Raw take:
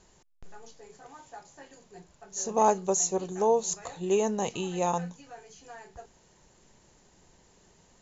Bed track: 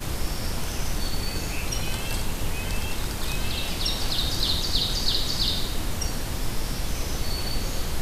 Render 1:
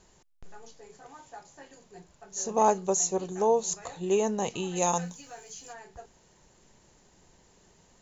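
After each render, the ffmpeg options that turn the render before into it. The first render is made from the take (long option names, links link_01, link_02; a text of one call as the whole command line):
ffmpeg -i in.wav -filter_complex "[0:a]asplit=3[link_01][link_02][link_03];[link_01]afade=type=out:start_time=4.75:duration=0.02[link_04];[link_02]aemphasis=mode=production:type=75kf,afade=type=in:start_time=4.75:duration=0.02,afade=type=out:start_time=5.72:duration=0.02[link_05];[link_03]afade=type=in:start_time=5.72:duration=0.02[link_06];[link_04][link_05][link_06]amix=inputs=3:normalize=0" out.wav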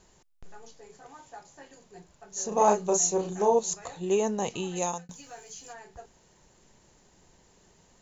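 ffmpeg -i in.wav -filter_complex "[0:a]asettb=1/sr,asplit=3[link_01][link_02][link_03];[link_01]atrim=end=2.484[link_04];[link_02]atrim=start=2.48:end=3.59,asetpts=PTS-STARTPTS,afade=type=in:duration=0.004:curve=qsin,afade=type=out:start_time=1.106:duration=0.004:curve=qsin,asplit=2[link_05][link_06];[link_06]adelay=34,volume=-3dB[link_07];[link_05][link_07]amix=inputs=2:normalize=0,atrim=end_sample=48951[link_08];[link_03]atrim=start=3.586[link_09];[link_04][link_08]acrossfade=duration=0.004:curve1=hsin:curve2=qsin[link_10];[link_10][link_09]acrossfade=duration=0.004:curve1=qsin:curve2=hsin,asplit=2[link_11][link_12];[link_11]atrim=end=5.09,asetpts=PTS-STARTPTS,afade=type=out:start_time=4.58:duration=0.51:curve=qsin[link_13];[link_12]atrim=start=5.09,asetpts=PTS-STARTPTS,afade=type=in:duration=0.004:curve=hsin[link_14];[link_13][link_14]concat=n=2:v=0:a=1" out.wav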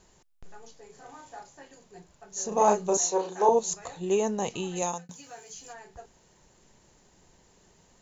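ffmpeg -i in.wav -filter_complex "[0:a]asettb=1/sr,asplit=3[link_01][link_02][link_03];[link_01]atrim=end=0.934[link_04];[link_02]atrim=start=0.93:end=1.49,asetpts=PTS-STARTPTS,afade=type=in:duration=0.004:curve=qsin,afade=type=out:start_time=0.556:duration=0.004:curve=qsin,asplit=2[link_05][link_06];[link_06]adelay=36,volume=-3dB[link_07];[link_05][link_07]amix=inputs=2:normalize=0,atrim=end_sample=24696[link_08];[link_03]atrim=start=1.486[link_09];[link_04][link_08]acrossfade=duration=0.004:curve1=hsin:curve2=qsin[link_10];[link_10][link_09]acrossfade=duration=0.004:curve1=qsin:curve2=hsin,asettb=1/sr,asplit=3[link_11][link_12][link_13];[link_11]atrim=end=2.974[link_14];[link_12]atrim=start=2.97:end=3.49,asetpts=PTS-STARTPTS,afade=type=in:duration=0.004:curve=qsin,afade=type=out:start_time=0.516:duration=0.004:curve=qsin,highpass=350,equalizer=frequency=500:width_type=q:width=4:gain=6,equalizer=frequency=940:width_type=q:width=4:gain=9,equalizer=frequency=1600:width_type=q:width=4:gain=5,equalizer=frequency=4000:width_type=q:width=4:gain=5,lowpass=frequency=6900:width=0.5412,lowpass=frequency=6900:width=1.3066[link_15];[link_13]atrim=start=3.486[link_16];[link_14][link_15]acrossfade=duration=0.004:curve1=hsin:curve2=qsin[link_17];[link_17][link_16]acrossfade=duration=0.004:curve1=qsin:curve2=hsin,asettb=1/sr,asplit=3[link_18][link_19][link_20];[link_18]atrim=end=4.824[link_21];[link_19]atrim=start=4.82:end=5.53,asetpts=PTS-STARTPTS,afade=type=in:duration=0.004:curve=qsin,afade=type=out:start_time=0.706:duration=0.004:curve=qsin,highpass=87[link_22];[link_20]atrim=start=5.526[link_23];[link_21][link_22]acrossfade=duration=0.004:curve1=hsin:curve2=qsin[link_24];[link_24][link_23]acrossfade=duration=0.004:curve1=qsin:curve2=hsin" out.wav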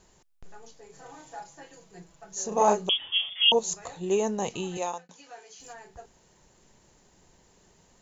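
ffmpeg -i in.wav -filter_complex "[0:a]asettb=1/sr,asplit=3[link_01][link_02][link_03];[link_01]atrim=end=0.934[link_04];[link_02]atrim=start=0.93:end=2.35,asetpts=PTS-STARTPTS,afade=type=in:duration=0.004:curve=qsin,afade=type=out:start_time=1.416:duration=0.004:curve=qsin,aecho=1:1:6.1:0.77,atrim=end_sample=62622[link_05];[link_03]atrim=start=2.346[link_06];[link_04][link_05]acrossfade=duration=0.004:curve1=hsin:curve2=qsin[link_07];[link_07][link_06]acrossfade=duration=0.004:curve1=qsin:curve2=hsin,asettb=1/sr,asplit=3[link_08][link_09][link_10];[link_08]atrim=end=2.894[link_11];[link_09]atrim=start=2.89:end=3.52,asetpts=PTS-STARTPTS,afade=type=in:duration=0.004:curve=qsin,afade=type=out:start_time=0.626:duration=0.004:curve=qsin,lowpass=frequency=3100:width_type=q:width=0.5098,lowpass=frequency=3100:width_type=q:width=0.6013,lowpass=frequency=3100:width_type=q:width=0.9,lowpass=frequency=3100:width_type=q:width=2.563,afreqshift=-3700[link_12];[link_10]atrim=start=3.516[link_13];[link_11][link_12]acrossfade=duration=0.004:curve1=hsin:curve2=qsin[link_14];[link_14][link_13]acrossfade=duration=0.004:curve1=qsin:curve2=hsin,asettb=1/sr,asplit=3[link_15][link_16][link_17];[link_15]atrim=end=4.774[link_18];[link_16]atrim=start=4.77:end=5.6,asetpts=PTS-STARTPTS,afade=type=in:duration=0.004:curve=qsin,afade=type=out:start_time=0.826:duration=0.004:curve=qsin,highpass=330,lowpass=4700[link_19];[link_17]atrim=start=5.596[link_20];[link_18][link_19]acrossfade=duration=0.004:curve1=hsin:curve2=qsin[link_21];[link_21][link_20]acrossfade=duration=0.004:curve1=qsin:curve2=hsin" out.wav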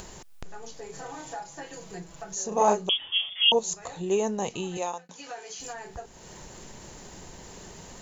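ffmpeg -i in.wav -af "acompressor=mode=upward:threshold=-30dB:ratio=2.5" out.wav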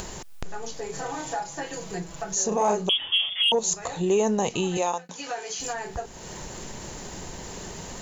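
ffmpeg -i in.wav -af "acontrast=84,alimiter=limit=-14.5dB:level=0:latency=1:release=65" out.wav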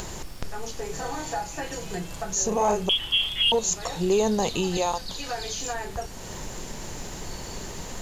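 ffmpeg -i in.wav -i bed.wav -filter_complex "[1:a]volume=-13dB[link_01];[0:a][link_01]amix=inputs=2:normalize=0" out.wav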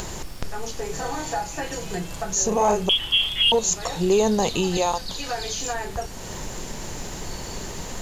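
ffmpeg -i in.wav -af "volume=3dB" out.wav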